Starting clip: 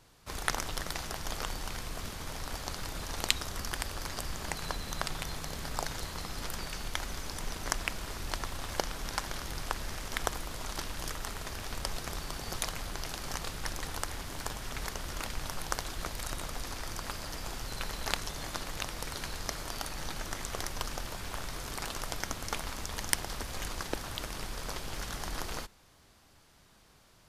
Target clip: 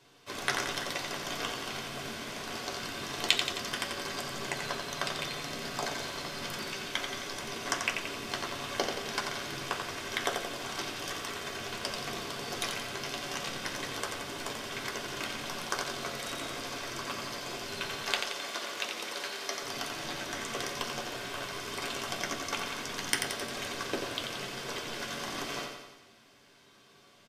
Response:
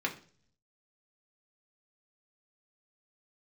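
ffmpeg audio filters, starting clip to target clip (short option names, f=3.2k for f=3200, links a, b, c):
-filter_complex "[0:a]asettb=1/sr,asplit=3[a][b][c];[a]atrim=end=18.014[d];[b]atrim=start=18.01:end=19.62,asetpts=PTS-STARTPTS,afade=t=in:d=0.004:c=qsin,afade=t=out:st=1.606:d=0.004:c=qsin,highpass=360[e];[c]atrim=start=19.616[f];[d][e]acrossfade=d=0.004:c1=hsin:c2=qsin[g];[g][f]acrossfade=d=0.004:c1=qsin:c2=hsin,aecho=1:1:88|176|264|352|440|528|616:0.501|0.286|0.163|0.0928|0.0529|0.0302|0.0172[h];[1:a]atrim=start_sample=2205,afade=t=out:st=0.18:d=0.01,atrim=end_sample=8379,asetrate=61740,aresample=44100[i];[h][i]afir=irnorm=-1:irlink=0"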